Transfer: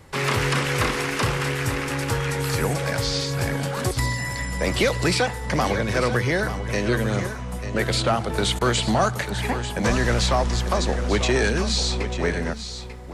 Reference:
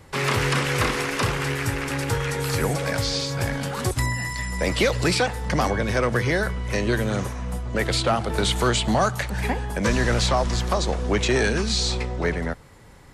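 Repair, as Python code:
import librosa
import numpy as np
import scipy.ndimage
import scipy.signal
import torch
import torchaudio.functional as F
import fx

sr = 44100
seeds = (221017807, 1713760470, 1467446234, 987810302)

y = fx.fix_declick_ar(x, sr, threshold=6.5)
y = fx.fix_interpolate(y, sr, at_s=(8.59,), length_ms=20.0)
y = fx.fix_echo_inverse(y, sr, delay_ms=893, level_db=-10.5)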